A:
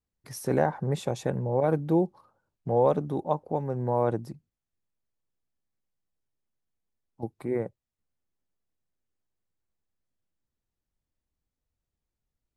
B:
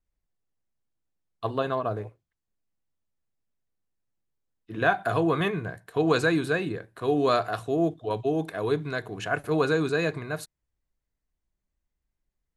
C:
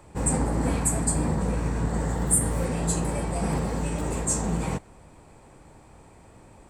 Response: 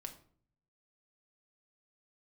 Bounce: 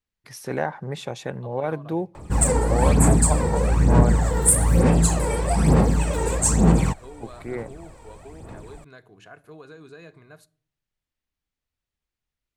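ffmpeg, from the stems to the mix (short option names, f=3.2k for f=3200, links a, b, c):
-filter_complex "[0:a]equalizer=f=2.5k:w=0.49:g=10,volume=-4.5dB,asplit=2[a][b];[b]volume=-17.5dB[c];[1:a]acompressor=threshold=-25dB:ratio=6,volume=-17dB,asplit=2[d][e];[e]volume=-7.5dB[f];[2:a]aphaser=in_gain=1:out_gain=1:delay=2.2:decay=0.64:speed=1.1:type=sinusoidal,adelay=2150,volume=3dB[g];[3:a]atrim=start_sample=2205[h];[c][f]amix=inputs=2:normalize=0[i];[i][h]afir=irnorm=-1:irlink=0[j];[a][d][g][j]amix=inputs=4:normalize=0"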